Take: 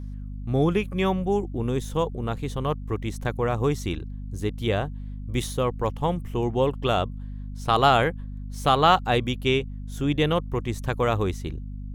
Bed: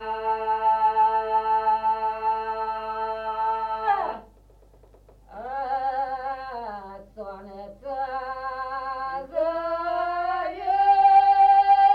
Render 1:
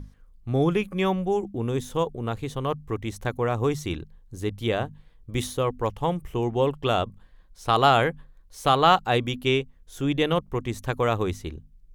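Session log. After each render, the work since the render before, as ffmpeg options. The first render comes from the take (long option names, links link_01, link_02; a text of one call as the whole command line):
ffmpeg -i in.wav -af "bandreject=frequency=50:width_type=h:width=6,bandreject=frequency=100:width_type=h:width=6,bandreject=frequency=150:width_type=h:width=6,bandreject=frequency=200:width_type=h:width=6,bandreject=frequency=250:width_type=h:width=6" out.wav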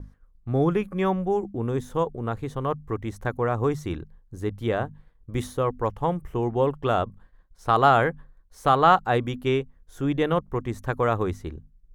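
ffmpeg -i in.wav -af "agate=range=-33dB:threshold=-46dB:ratio=3:detection=peak,highshelf=frequency=2100:width_type=q:width=1.5:gain=-6.5" out.wav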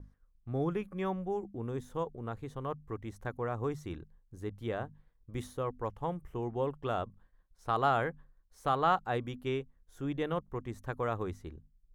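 ffmpeg -i in.wav -af "volume=-10.5dB" out.wav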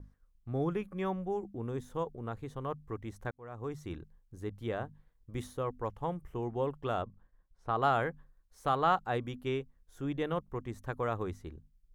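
ffmpeg -i in.wav -filter_complex "[0:a]asettb=1/sr,asplit=3[link_01][link_02][link_03];[link_01]atrim=end=7.024[link_04];[link_02]atrim=start=7.02:end=7.82,asetpts=PTS-STARTPTS,afade=type=in:duration=0.004:curve=qsin,afade=type=out:start_time=0.796:duration=0.004:curve=qsin,lowpass=frequency=1700:poles=1[link_05];[link_03]atrim=start=7.816[link_06];[link_04][link_05]acrossfade=duration=0.004:curve1=hsin:curve2=qsin[link_07];[link_07][link_06]acrossfade=duration=0.004:curve1=qsin:curve2=hsin,asplit=2[link_08][link_09];[link_08]atrim=end=3.31,asetpts=PTS-STARTPTS,afade=type=out:start_time=3.306:duration=0.004:curve=hsin[link_10];[link_09]atrim=start=3.31,asetpts=PTS-STARTPTS,afade=type=in:duration=0.61[link_11];[link_10][link_11]concat=n=2:v=0:a=1" out.wav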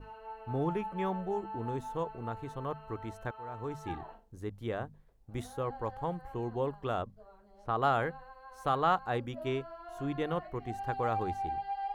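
ffmpeg -i in.wav -i bed.wav -filter_complex "[1:a]volume=-20dB[link_01];[0:a][link_01]amix=inputs=2:normalize=0" out.wav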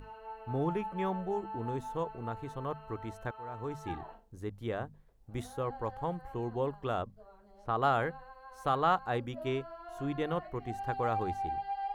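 ffmpeg -i in.wav -af "acompressor=mode=upward:threshold=-54dB:ratio=2.5" out.wav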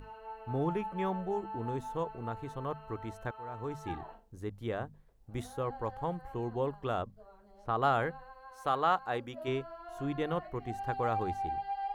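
ffmpeg -i in.wav -filter_complex "[0:a]asettb=1/sr,asplit=3[link_01][link_02][link_03];[link_01]atrim=end=8.514[link_04];[link_02]atrim=start=8.51:end=9.48,asetpts=PTS-STARTPTS,afade=type=in:duration=0.004:curve=qsin,afade=type=out:start_time=0.966:duration=0.004:curve=qsin,lowshelf=frequency=190:gain=-10.5[link_05];[link_03]atrim=start=9.476[link_06];[link_04][link_05]acrossfade=duration=0.004:curve1=hsin:curve2=qsin[link_07];[link_07][link_06]acrossfade=duration=0.004:curve1=qsin:curve2=hsin" out.wav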